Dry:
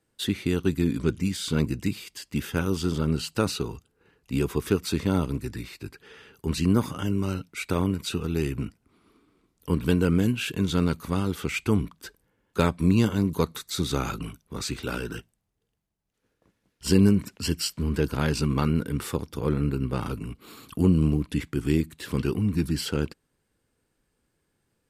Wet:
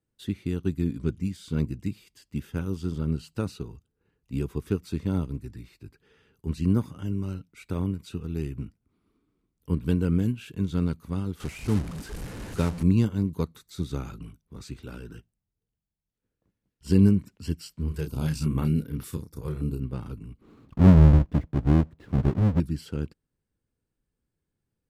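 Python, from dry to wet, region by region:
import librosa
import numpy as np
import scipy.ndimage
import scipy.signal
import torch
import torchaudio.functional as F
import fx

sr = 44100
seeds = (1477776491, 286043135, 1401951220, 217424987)

y = fx.chain(x, sr, fx.delta_mod(bps=64000, step_db=-23.0),
    fx.notch(hz=3400.0, q=26.0), at=(11.4, 12.83))
y = fx.chain(y, sr, fx.high_shelf(hz=5500.0, db=12.0),
    fx.doubler(ms=32.0, db=-6.5),
    fx.filter_held_notch(hz=5.2, low_hz=250.0, high_hz=8000.0), at=(17.88, 19.8))
y = fx.chain(y, sr, fx.halfwave_hold(),
    fx.lowpass(hz=1100.0, slope=6), at=(20.41, 22.6))
y = fx.low_shelf(y, sr, hz=290.0, db=11.5)
y = fx.upward_expand(y, sr, threshold_db=-24.0, expansion=1.5)
y = y * 10.0 ** (-5.5 / 20.0)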